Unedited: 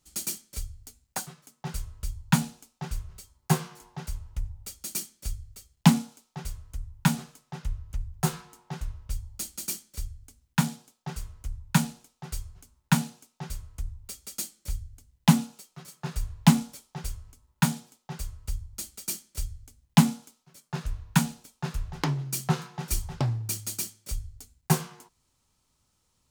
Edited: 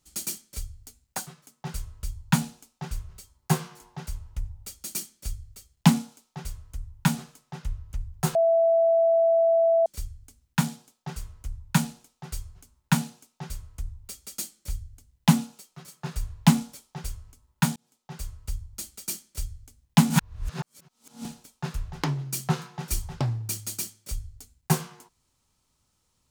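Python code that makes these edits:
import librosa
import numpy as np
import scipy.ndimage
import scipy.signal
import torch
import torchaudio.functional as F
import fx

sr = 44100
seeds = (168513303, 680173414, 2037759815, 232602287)

y = fx.edit(x, sr, fx.bleep(start_s=8.35, length_s=1.51, hz=663.0, db=-17.0),
    fx.fade_in_span(start_s=17.76, length_s=0.49),
    fx.reverse_span(start_s=20.1, length_s=1.15), tone=tone)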